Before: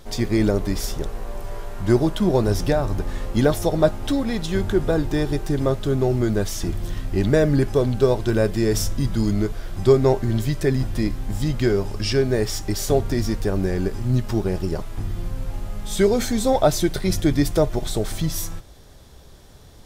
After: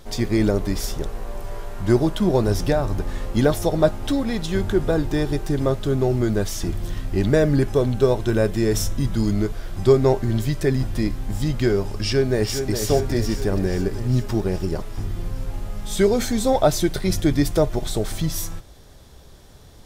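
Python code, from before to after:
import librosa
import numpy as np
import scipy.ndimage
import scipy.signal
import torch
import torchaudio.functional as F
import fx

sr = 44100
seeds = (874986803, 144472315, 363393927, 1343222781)

y = fx.notch(x, sr, hz=4700.0, q=12.0, at=(7.64, 9.14))
y = fx.echo_throw(y, sr, start_s=11.94, length_s=0.82, ms=410, feedback_pct=65, wet_db=-7.5)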